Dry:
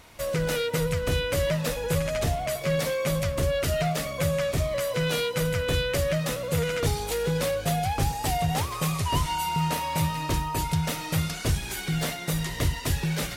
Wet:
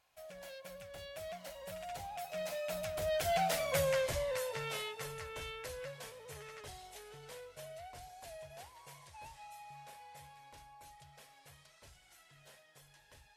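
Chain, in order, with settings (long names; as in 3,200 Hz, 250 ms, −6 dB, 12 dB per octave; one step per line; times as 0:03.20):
source passing by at 0:03.73, 42 m/s, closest 18 metres
low shelf with overshoot 450 Hz −9.5 dB, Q 1.5
notch filter 1,200 Hz, Q 9.6
level −3.5 dB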